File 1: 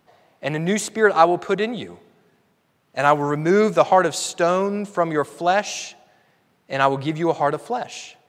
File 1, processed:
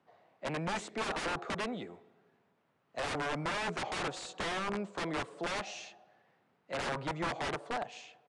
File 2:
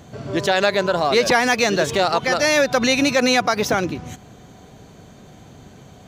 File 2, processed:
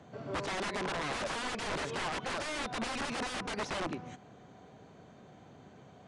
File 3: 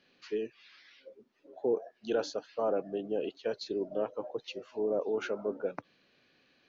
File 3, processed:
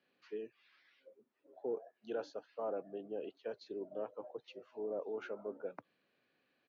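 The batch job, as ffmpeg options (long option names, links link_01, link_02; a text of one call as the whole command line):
ffmpeg -i in.wav -filter_complex "[0:a]highpass=74,acrossover=split=100|800|2900[link_01][link_02][link_03][link_04];[link_01]acompressor=threshold=-56dB:ratio=6[link_05];[link_05][link_02][link_03][link_04]amix=inputs=4:normalize=0,aeval=exprs='(mod(7.5*val(0)+1,2)-1)/7.5':channel_layout=same,asplit=2[link_06][link_07];[link_07]highpass=frequency=720:poles=1,volume=4dB,asoftclip=type=tanh:threshold=-17.5dB[link_08];[link_06][link_08]amix=inputs=2:normalize=0,lowpass=frequency=1200:poles=1,volume=-6dB,aresample=22050,aresample=44100,volume=-6.5dB" out.wav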